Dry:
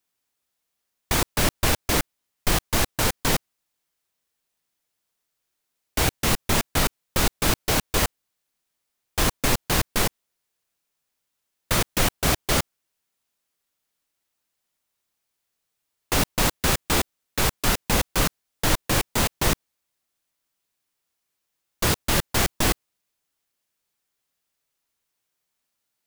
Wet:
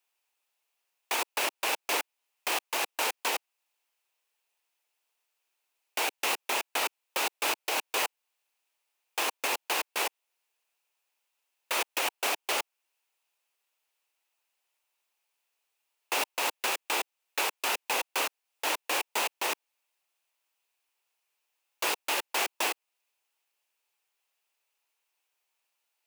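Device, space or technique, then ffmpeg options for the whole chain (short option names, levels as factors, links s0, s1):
laptop speaker: -af "highpass=f=380:w=0.5412,highpass=f=380:w=1.3066,equalizer=f=880:t=o:w=0.54:g=6.5,equalizer=f=2600:t=o:w=0.44:g=9,alimiter=limit=0.168:level=0:latency=1:release=303,volume=0.75"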